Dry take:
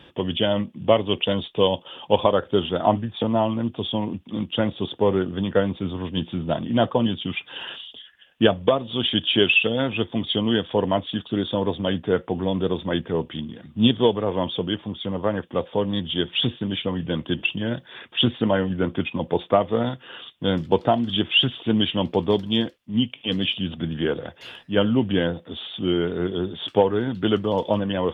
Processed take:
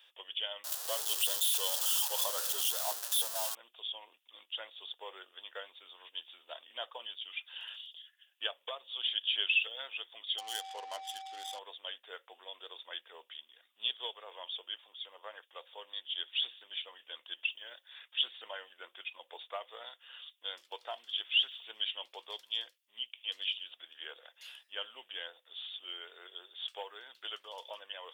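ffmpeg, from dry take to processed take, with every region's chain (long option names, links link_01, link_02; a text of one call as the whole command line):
ffmpeg -i in.wav -filter_complex "[0:a]asettb=1/sr,asplit=3[link_01][link_02][link_03];[link_01]atrim=end=0.644[link_04];[link_02]atrim=start=0.64:end=3.55,asetpts=PTS-STARTPTS,afade=type=in:duration=0.004:curve=qsin,afade=type=out:start_time=2.906:duration=0.004:curve=qsin,aeval=exprs='val(0)+0.5*0.119*sgn(val(0))':channel_layout=same,equalizer=frequency=2200:width=3.2:gain=-13.5[link_05];[link_03]atrim=start=3.546[link_06];[link_04][link_05]acrossfade=duration=0.004:curve1=hsin:curve2=qsin[link_07];[link_07][link_06]acrossfade=duration=0.004:curve1=qsin:curve2=hsin,asettb=1/sr,asplit=3[link_08][link_09][link_10];[link_08]atrim=end=10.384[link_11];[link_09]atrim=start=10.38:end=11.59,asetpts=PTS-STARTPTS,afade=type=in:duration=0.004:curve=qsin,afade=type=out:start_time=1.206:duration=0.004:curve=qsin,lowshelf=frequency=230:gain=5,aeval=exprs='val(0)+0.0794*sin(2*PI*770*n/s)':channel_layout=same,adynamicsmooth=sensitivity=3.5:basefreq=1500[link_12];[link_10]atrim=start=11.586[link_13];[link_11][link_12]acrossfade=duration=0.004:curve1=hsin:curve2=qsin[link_14];[link_14][link_13]acrossfade=duration=0.004:curve1=qsin:curve2=hsin,highpass=frequency=500:width=0.5412,highpass=frequency=500:width=1.3066,aderivative,volume=-2dB" out.wav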